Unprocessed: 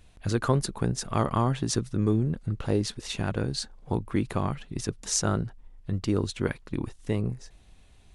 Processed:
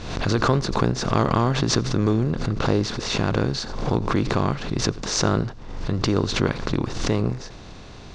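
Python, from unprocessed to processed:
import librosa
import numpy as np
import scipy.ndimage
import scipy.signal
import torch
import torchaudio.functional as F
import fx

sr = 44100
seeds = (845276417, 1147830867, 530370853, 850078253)

y = fx.bin_compress(x, sr, power=0.6)
y = scipy.signal.sosfilt(scipy.signal.butter(4, 5600.0, 'lowpass', fs=sr, output='sos'), y)
y = y + 10.0 ** (-22.5 / 20.0) * np.pad(y, (int(88 * sr / 1000.0), 0))[:len(y)]
y = fx.pre_swell(y, sr, db_per_s=52.0)
y = F.gain(torch.from_numpy(y), 1.5).numpy()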